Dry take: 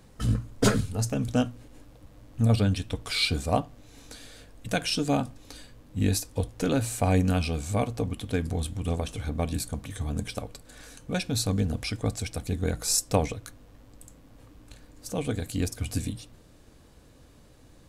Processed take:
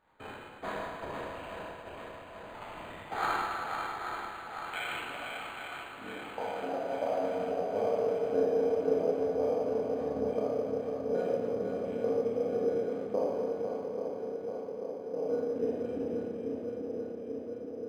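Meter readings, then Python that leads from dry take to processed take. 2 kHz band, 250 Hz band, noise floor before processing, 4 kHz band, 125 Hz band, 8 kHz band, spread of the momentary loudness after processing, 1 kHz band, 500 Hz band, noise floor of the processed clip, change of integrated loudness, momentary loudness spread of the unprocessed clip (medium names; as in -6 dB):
-3.5 dB, -8.5 dB, -54 dBFS, -14.0 dB, -22.0 dB, under -20 dB, 13 LU, -0.5 dB, +3.5 dB, -46 dBFS, -5.0 dB, 20 LU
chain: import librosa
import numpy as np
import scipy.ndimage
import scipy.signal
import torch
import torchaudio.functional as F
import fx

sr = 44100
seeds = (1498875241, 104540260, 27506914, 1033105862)

y = fx.spec_trails(x, sr, decay_s=0.59)
y = fx.highpass(y, sr, hz=250.0, slope=6)
y = fx.high_shelf(y, sr, hz=4800.0, db=-7.0)
y = fx.rider(y, sr, range_db=10, speed_s=0.5)
y = fx.transient(y, sr, attack_db=6, sustain_db=-9)
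y = fx.filter_sweep_bandpass(y, sr, from_hz=4700.0, to_hz=460.0, start_s=3.5, end_s=7.31, q=4.9)
y = fx.echo_swing(y, sr, ms=837, ratio=1.5, feedback_pct=61, wet_db=-6)
y = fx.dynamic_eq(y, sr, hz=410.0, q=1.5, threshold_db=-41.0, ratio=4.0, max_db=-6)
y = fx.rev_schroeder(y, sr, rt60_s=2.0, comb_ms=26, drr_db=-6.5)
y = np.interp(np.arange(len(y)), np.arange(len(y))[::8], y[::8])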